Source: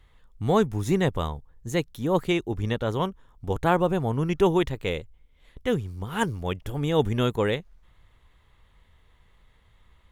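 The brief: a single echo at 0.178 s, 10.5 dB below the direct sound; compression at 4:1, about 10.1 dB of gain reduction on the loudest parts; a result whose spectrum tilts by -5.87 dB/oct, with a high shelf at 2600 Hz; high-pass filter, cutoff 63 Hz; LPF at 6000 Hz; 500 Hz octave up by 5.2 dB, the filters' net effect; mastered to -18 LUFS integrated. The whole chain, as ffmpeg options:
-af "highpass=63,lowpass=6k,equalizer=f=500:t=o:g=6.5,highshelf=f=2.6k:g=-4.5,acompressor=threshold=-24dB:ratio=4,aecho=1:1:178:0.299,volume=11dB"

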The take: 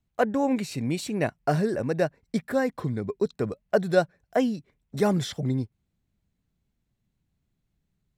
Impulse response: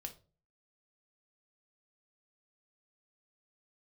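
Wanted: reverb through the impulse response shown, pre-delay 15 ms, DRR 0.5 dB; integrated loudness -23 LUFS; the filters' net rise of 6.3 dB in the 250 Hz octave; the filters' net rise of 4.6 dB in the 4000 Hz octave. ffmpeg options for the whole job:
-filter_complex "[0:a]equalizer=f=250:t=o:g=7.5,equalizer=f=4k:t=o:g=5.5,asplit=2[a][b];[1:a]atrim=start_sample=2205,adelay=15[c];[b][c]afir=irnorm=-1:irlink=0,volume=3dB[d];[a][d]amix=inputs=2:normalize=0,volume=-2.5dB"

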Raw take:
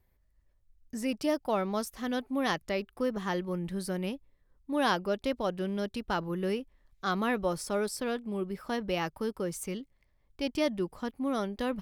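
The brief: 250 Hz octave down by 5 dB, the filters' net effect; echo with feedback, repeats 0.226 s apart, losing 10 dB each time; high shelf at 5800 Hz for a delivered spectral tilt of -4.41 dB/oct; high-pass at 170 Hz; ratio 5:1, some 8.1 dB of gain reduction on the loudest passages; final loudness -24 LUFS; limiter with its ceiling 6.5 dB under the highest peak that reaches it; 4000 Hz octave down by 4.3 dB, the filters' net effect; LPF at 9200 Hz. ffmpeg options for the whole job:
-af "highpass=170,lowpass=9.2k,equalizer=f=250:t=o:g=-5,equalizer=f=4k:t=o:g=-8.5,highshelf=f=5.8k:g=6.5,acompressor=threshold=-34dB:ratio=5,alimiter=level_in=6dB:limit=-24dB:level=0:latency=1,volume=-6dB,aecho=1:1:226|452|678|904:0.316|0.101|0.0324|0.0104,volume=16.5dB"

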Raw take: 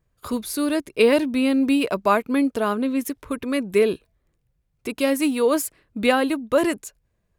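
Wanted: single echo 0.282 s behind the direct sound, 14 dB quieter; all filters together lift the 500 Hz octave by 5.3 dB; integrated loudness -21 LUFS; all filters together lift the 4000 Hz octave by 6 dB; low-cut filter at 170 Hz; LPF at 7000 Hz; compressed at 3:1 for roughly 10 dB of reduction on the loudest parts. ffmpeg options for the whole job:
-af "highpass=170,lowpass=7k,equalizer=f=500:t=o:g=6,equalizer=f=4k:t=o:g=8,acompressor=threshold=-22dB:ratio=3,aecho=1:1:282:0.2,volume=4.5dB"

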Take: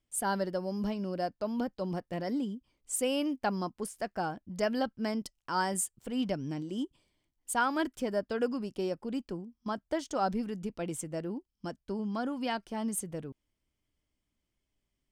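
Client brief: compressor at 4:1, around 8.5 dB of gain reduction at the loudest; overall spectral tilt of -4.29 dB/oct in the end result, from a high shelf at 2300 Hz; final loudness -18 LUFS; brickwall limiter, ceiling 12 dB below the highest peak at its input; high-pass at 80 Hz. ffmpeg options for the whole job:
-af "highpass=80,highshelf=f=2.3k:g=9,acompressor=threshold=-31dB:ratio=4,volume=22.5dB,alimiter=limit=-8.5dB:level=0:latency=1"

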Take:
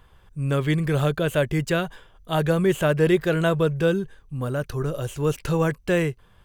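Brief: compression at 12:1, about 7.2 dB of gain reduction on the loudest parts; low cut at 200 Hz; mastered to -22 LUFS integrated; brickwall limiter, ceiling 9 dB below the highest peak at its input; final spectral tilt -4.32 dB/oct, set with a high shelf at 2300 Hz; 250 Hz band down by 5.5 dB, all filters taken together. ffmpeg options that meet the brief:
-af "highpass=200,equalizer=f=250:t=o:g=-6,highshelf=f=2.3k:g=7,acompressor=threshold=-24dB:ratio=12,volume=11.5dB,alimiter=limit=-11dB:level=0:latency=1"

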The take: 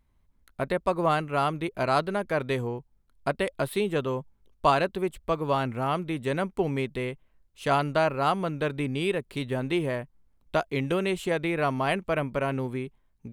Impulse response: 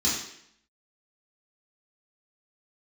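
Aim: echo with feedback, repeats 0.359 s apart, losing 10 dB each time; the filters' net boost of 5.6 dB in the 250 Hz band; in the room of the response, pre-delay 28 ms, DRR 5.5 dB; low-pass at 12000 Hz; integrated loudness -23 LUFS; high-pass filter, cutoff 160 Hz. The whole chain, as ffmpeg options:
-filter_complex "[0:a]highpass=160,lowpass=12k,equalizer=f=250:t=o:g=8.5,aecho=1:1:359|718|1077|1436:0.316|0.101|0.0324|0.0104,asplit=2[a][b];[1:a]atrim=start_sample=2205,adelay=28[c];[b][c]afir=irnorm=-1:irlink=0,volume=-16dB[d];[a][d]amix=inputs=2:normalize=0,volume=0.5dB"

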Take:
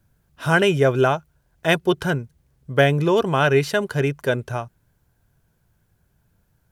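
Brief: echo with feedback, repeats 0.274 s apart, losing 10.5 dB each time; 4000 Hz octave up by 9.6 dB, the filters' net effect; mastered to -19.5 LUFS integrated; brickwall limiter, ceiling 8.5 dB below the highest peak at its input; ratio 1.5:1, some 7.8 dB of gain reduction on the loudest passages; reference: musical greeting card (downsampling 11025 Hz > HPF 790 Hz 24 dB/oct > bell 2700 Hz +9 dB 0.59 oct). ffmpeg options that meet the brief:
-af "equalizer=f=4k:t=o:g=5.5,acompressor=threshold=-34dB:ratio=1.5,alimiter=limit=-18.5dB:level=0:latency=1,aecho=1:1:274|548|822:0.299|0.0896|0.0269,aresample=11025,aresample=44100,highpass=f=790:w=0.5412,highpass=f=790:w=1.3066,equalizer=f=2.7k:t=o:w=0.59:g=9,volume=12dB"

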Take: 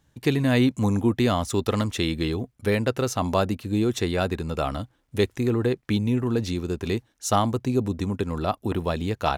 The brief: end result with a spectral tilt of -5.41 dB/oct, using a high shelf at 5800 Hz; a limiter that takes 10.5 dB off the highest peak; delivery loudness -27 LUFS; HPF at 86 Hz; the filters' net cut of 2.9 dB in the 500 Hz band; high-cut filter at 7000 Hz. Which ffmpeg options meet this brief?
-af "highpass=86,lowpass=7k,equalizer=f=500:t=o:g=-4,highshelf=f=5.8k:g=7,volume=3dB,alimiter=limit=-15dB:level=0:latency=1"

